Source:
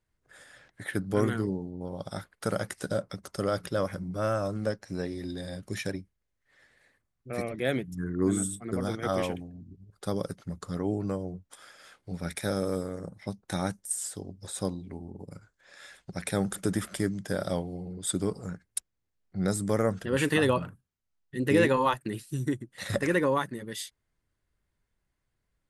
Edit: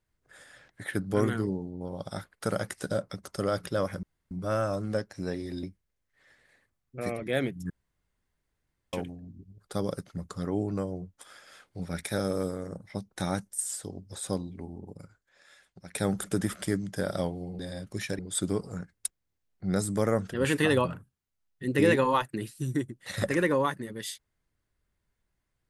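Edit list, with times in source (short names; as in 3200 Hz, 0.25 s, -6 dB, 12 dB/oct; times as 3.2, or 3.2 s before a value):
4.03 insert room tone 0.28 s
5.35–5.95 move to 17.91
8.02–9.25 room tone
15.12–16.27 fade out quadratic, to -11 dB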